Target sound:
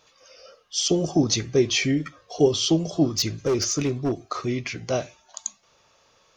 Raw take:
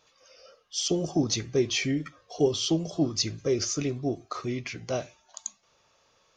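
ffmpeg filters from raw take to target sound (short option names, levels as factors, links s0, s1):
-filter_complex "[0:a]asettb=1/sr,asplit=3[s0][s1][s2];[s0]atrim=end=3.124[s3];[s1]atrim=start=3.12:end=4.23,asetpts=PTS-STARTPTS,afade=t=in:d=0.004:c=qsin,afade=t=out:st=1.106:d=0.004:c=qsin,asoftclip=type=hard:threshold=0.0708[s4];[s2]atrim=start=4.226[s5];[s3][s4]acrossfade=d=0.004:c1=hsin:c2=qsin[s6];[s6][s5]acrossfade=d=0.004:c1=qsin:c2=hsin,volume=1.78"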